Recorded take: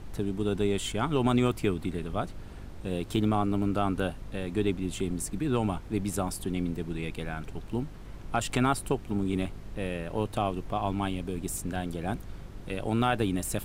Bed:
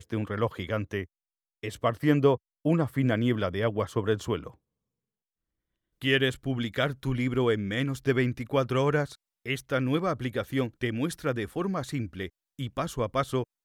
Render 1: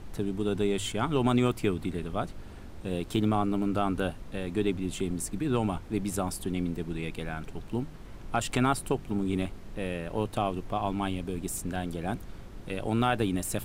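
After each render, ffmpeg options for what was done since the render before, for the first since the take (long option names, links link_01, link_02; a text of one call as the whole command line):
ffmpeg -i in.wav -af "bandreject=frequency=50:width_type=h:width=4,bandreject=frequency=100:width_type=h:width=4,bandreject=frequency=150:width_type=h:width=4" out.wav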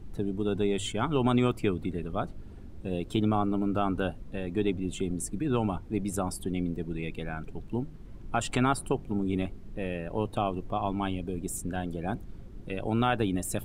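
ffmpeg -i in.wav -af "afftdn=noise_reduction=11:noise_floor=-44" out.wav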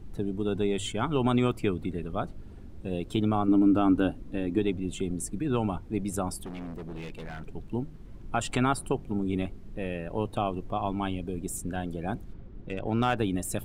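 ffmpeg -i in.wav -filter_complex "[0:a]asettb=1/sr,asplit=3[link_01][link_02][link_03];[link_01]atrim=end=3.484[link_04];[link_02]atrim=start=3.48:end=4.59,asetpts=PTS-STARTPTS,afade=type=in:duration=0.004:curve=qsin,afade=type=out:start_time=1.106:duration=0.004:curve=qsin,equalizer=frequency=290:width_type=o:width=0.43:gain=11.5[link_05];[link_03]atrim=start=4.586[link_06];[link_04][link_05]acrossfade=duration=0.004:curve1=hsin:curve2=qsin[link_07];[link_07][link_06]acrossfade=duration=0.004:curve1=qsin:curve2=hsin,asettb=1/sr,asplit=3[link_08][link_09][link_10];[link_08]atrim=end=6.404[link_11];[link_09]atrim=start=6.4:end=7.47,asetpts=PTS-STARTPTS,afade=type=in:duration=0.004:curve=qsin,afade=type=out:start_time=1.066:duration=0.004:curve=qsin,asoftclip=type=hard:threshold=-35.5dB[link_12];[link_10]atrim=start=7.466[link_13];[link_11][link_12]acrossfade=duration=0.004:curve1=hsin:curve2=qsin[link_14];[link_14][link_13]acrossfade=duration=0.004:curve1=qsin:curve2=hsin,asettb=1/sr,asplit=3[link_15][link_16][link_17];[link_15]atrim=end=12.334[link_18];[link_16]atrim=start=12.33:end=13.17,asetpts=PTS-STARTPTS,afade=type=in:duration=0.004:curve=qsin,afade=type=out:start_time=0.836:duration=0.004:curve=qsin,adynamicsmooth=sensitivity=6.5:basefreq=3600[link_19];[link_17]atrim=start=13.166[link_20];[link_18][link_19]acrossfade=duration=0.004:curve1=hsin:curve2=qsin[link_21];[link_21][link_20]acrossfade=duration=0.004:curve1=qsin:curve2=hsin" out.wav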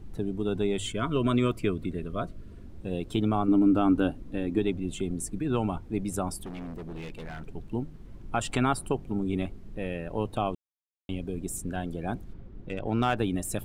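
ffmpeg -i in.wav -filter_complex "[0:a]asettb=1/sr,asplit=3[link_01][link_02][link_03];[link_01]atrim=end=0.894[link_04];[link_02]atrim=start=0.89:end=2.67,asetpts=PTS-STARTPTS,afade=type=in:duration=0.004:curve=qsin,afade=type=out:start_time=1.776:duration=0.004:curve=qsin,asuperstop=centerf=820:order=20:qfactor=3.8[link_05];[link_03]atrim=start=2.666[link_06];[link_04][link_05]acrossfade=duration=0.004:curve1=hsin:curve2=qsin[link_07];[link_07][link_06]acrossfade=duration=0.004:curve1=qsin:curve2=hsin,asplit=3[link_08][link_09][link_10];[link_08]atrim=end=10.55,asetpts=PTS-STARTPTS,afade=type=out:start_time=10.546:duration=0.004:curve=hsin[link_11];[link_09]atrim=start=10.55:end=11.09,asetpts=PTS-STARTPTS,volume=0[link_12];[link_10]atrim=start=11.09,asetpts=PTS-STARTPTS,afade=type=in:duration=0.004:curve=hsin[link_13];[link_11][link_12][link_13]concat=n=3:v=0:a=1" out.wav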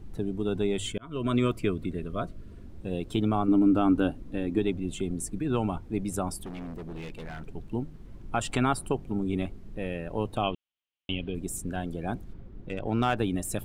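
ffmpeg -i in.wav -filter_complex "[0:a]asettb=1/sr,asplit=3[link_01][link_02][link_03];[link_01]atrim=end=10.434[link_04];[link_02]atrim=start=10.43:end=11.35,asetpts=PTS-STARTPTS,afade=type=in:duration=0.004:curve=qsin,afade=type=out:start_time=0.916:duration=0.004:curve=qsin,lowpass=frequency=3000:width_type=q:width=5.3[link_05];[link_03]atrim=start=11.346[link_06];[link_04][link_05]acrossfade=duration=0.004:curve1=hsin:curve2=qsin[link_07];[link_07][link_06]acrossfade=duration=0.004:curve1=qsin:curve2=hsin,asplit=2[link_08][link_09];[link_08]atrim=end=0.98,asetpts=PTS-STARTPTS,afade=type=out:start_time=0.976:duration=0.004:curve=hsin[link_10];[link_09]atrim=start=0.98,asetpts=PTS-STARTPTS,afade=type=in:duration=0.4[link_11];[link_10][link_11]concat=n=2:v=0:a=1" out.wav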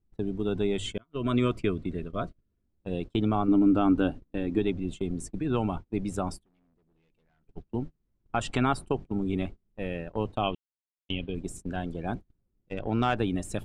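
ffmpeg -i in.wav -af "agate=range=-31dB:threshold=-34dB:ratio=16:detection=peak,lowpass=6600" out.wav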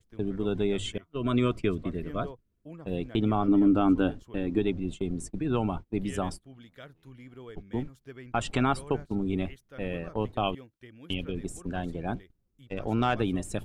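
ffmpeg -i in.wav -i bed.wav -filter_complex "[1:a]volume=-20.5dB[link_01];[0:a][link_01]amix=inputs=2:normalize=0" out.wav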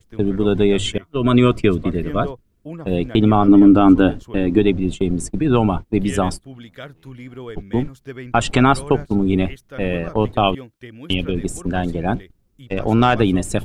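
ffmpeg -i in.wav -af "volume=12dB,alimiter=limit=-2dB:level=0:latency=1" out.wav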